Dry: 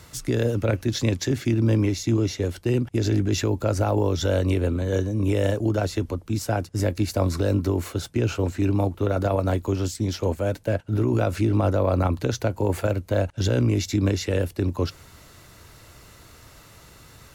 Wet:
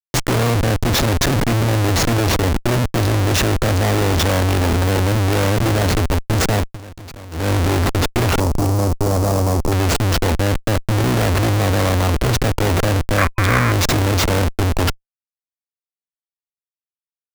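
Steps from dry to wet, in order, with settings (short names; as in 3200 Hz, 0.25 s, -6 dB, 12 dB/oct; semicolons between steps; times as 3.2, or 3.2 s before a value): Schmitt trigger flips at -31 dBFS; 6.58–7.51 dip -18.5 dB, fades 0.20 s; 8.4–9.72 band shelf 2400 Hz -11.5 dB; 13.18–13.72 spectral gain 1000–2500 Hz +10 dB; gain +8 dB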